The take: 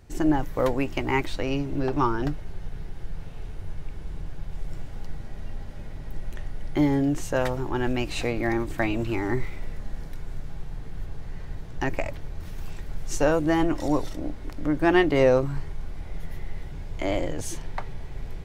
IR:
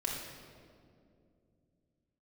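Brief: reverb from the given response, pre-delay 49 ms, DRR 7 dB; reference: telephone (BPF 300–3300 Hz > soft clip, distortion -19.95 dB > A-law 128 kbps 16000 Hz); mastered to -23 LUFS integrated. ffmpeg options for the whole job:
-filter_complex "[0:a]asplit=2[a][b];[1:a]atrim=start_sample=2205,adelay=49[c];[b][c]afir=irnorm=-1:irlink=0,volume=-10.5dB[d];[a][d]amix=inputs=2:normalize=0,highpass=300,lowpass=3.3k,asoftclip=threshold=-13dB,volume=5dB" -ar 16000 -c:a pcm_alaw

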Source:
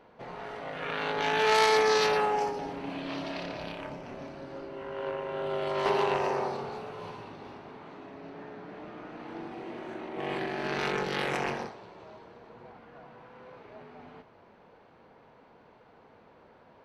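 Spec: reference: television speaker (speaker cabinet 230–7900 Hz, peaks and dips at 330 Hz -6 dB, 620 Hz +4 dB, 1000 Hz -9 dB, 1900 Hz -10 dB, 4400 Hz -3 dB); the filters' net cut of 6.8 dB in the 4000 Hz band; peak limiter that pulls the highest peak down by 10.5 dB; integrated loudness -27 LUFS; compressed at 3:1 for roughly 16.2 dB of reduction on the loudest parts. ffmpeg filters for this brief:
-af "equalizer=f=4k:t=o:g=-7,acompressor=threshold=-42dB:ratio=3,alimiter=level_in=12dB:limit=-24dB:level=0:latency=1,volume=-12dB,highpass=f=230:w=0.5412,highpass=f=230:w=1.3066,equalizer=f=330:t=q:w=4:g=-6,equalizer=f=620:t=q:w=4:g=4,equalizer=f=1k:t=q:w=4:g=-9,equalizer=f=1.9k:t=q:w=4:g=-10,equalizer=f=4.4k:t=q:w=4:g=-3,lowpass=f=7.9k:w=0.5412,lowpass=f=7.9k:w=1.3066,volume=21dB"

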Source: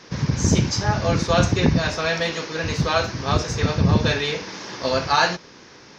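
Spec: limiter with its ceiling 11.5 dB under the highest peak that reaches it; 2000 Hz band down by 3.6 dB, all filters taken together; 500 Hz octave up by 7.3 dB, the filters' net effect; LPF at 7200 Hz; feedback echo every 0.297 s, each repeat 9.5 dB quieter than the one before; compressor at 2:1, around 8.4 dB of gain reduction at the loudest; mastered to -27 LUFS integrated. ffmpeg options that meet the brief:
-af "lowpass=7.2k,equalizer=f=500:t=o:g=9,equalizer=f=2k:t=o:g=-5.5,acompressor=threshold=-26dB:ratio=2,alimiter=limit=-22dB:level=0:latency=1,aecho=1:1:297|594|891|1188:0.335|0.111|0.0365|0.012,volume=3.5dB"

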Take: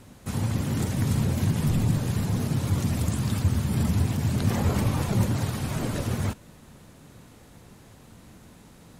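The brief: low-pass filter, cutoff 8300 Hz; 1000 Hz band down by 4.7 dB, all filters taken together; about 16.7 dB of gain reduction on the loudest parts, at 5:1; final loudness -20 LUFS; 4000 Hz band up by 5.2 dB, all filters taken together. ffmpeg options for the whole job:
-af "lowpass=8.3k,equalizer=f=1k:t=o:g=-6.5,equalizer=f=4k:t=o:g=7,acompressor=threshold=-39dB:ratio=5,volume=22.5dB"

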